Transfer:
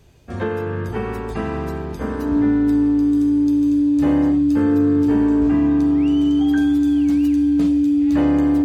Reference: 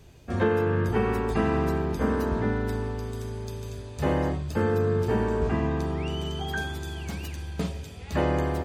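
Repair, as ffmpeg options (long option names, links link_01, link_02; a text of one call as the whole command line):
ffmpeg -i in.wav -af "bandreject=frequency=290:width=30" out.wav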